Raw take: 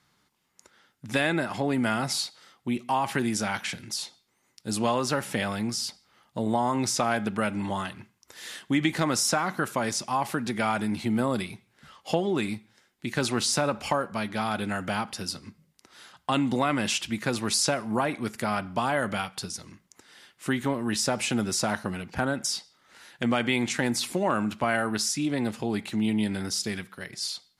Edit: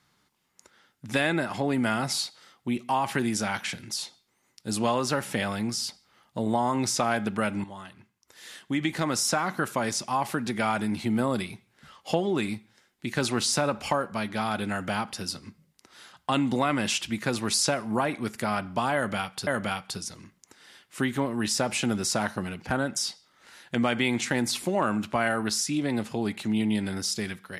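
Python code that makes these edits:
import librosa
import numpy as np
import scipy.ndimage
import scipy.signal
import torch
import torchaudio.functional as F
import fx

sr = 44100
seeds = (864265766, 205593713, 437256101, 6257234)

y = fx.edit(x, sr, fx.fade_in_from(start_s=7.64, length_s=1.87, floor_db=-13.5),
    fx.repeat(start_s=18.95, length_s=0.52, count=2), tone=tone)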